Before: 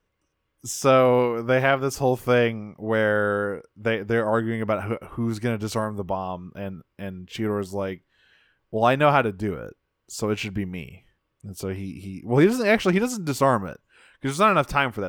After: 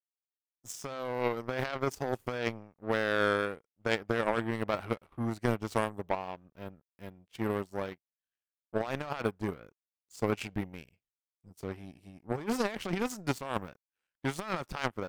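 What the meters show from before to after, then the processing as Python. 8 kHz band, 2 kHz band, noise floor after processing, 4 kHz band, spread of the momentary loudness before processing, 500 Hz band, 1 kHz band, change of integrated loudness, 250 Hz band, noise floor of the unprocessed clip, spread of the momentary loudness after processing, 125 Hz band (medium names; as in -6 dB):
-11.0 dB, -9.5 dB, under -85 dBFS, -8.0 dB, 17 LU, -11.5 dB, -11.5 dB, -11.0 dB, -10.5 dB, -76 dBFS, 17 LU, -11.0 dB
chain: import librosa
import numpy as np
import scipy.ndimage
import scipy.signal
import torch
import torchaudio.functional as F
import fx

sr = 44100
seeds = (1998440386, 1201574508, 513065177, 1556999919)

y = fx.power_curve(x, sr, exponent=2.0)
y = fx.over_compress(y, sr, threshold_db=-35.0, ratio=-1.0)
y = y * 10.0 ** (3.0 / 20.0)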